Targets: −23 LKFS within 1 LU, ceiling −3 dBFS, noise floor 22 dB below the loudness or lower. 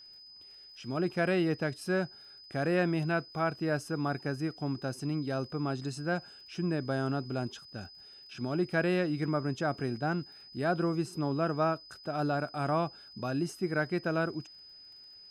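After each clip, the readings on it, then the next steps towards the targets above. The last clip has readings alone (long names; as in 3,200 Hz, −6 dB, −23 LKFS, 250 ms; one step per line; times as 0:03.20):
crackle rate 35 per second; interfering tone 5,000 Hz; level of the tone −50 dBFS; integrated loudness −32.5 LKFS; sample peak −17.0 dBFS; target loudness −23.0 LKFS
→ click removal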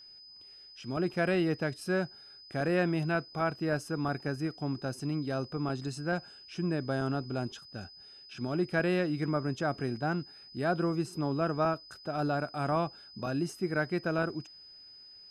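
crackle rate 0.065 per second; interfering tone 5,000 Hz; level of the tone −50 dBFS
→ notch filter 5,000 Hz, Q 30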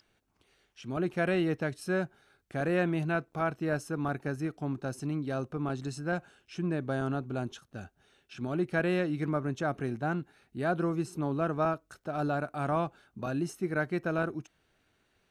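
interfering tone none found; integrated loudness −32.5 LKFS; sample peak −17.0 dBFS; target loudness −23.0 LKFS
→ level +9.5 dB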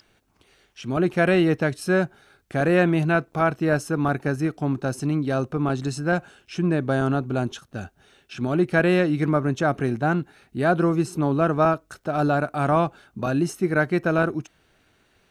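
integrated loudness −23.0 LKFS; sample peak −7.5 dBFS; background noise floor −64 dBFS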